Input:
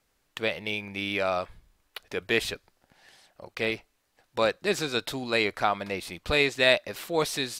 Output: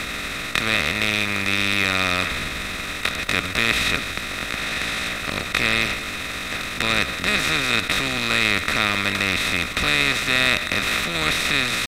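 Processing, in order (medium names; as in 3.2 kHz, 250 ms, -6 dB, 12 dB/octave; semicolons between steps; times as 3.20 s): spectral levelling over time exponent 0.2; tempo 0.64×; high-order bell 600 Hz -13 dB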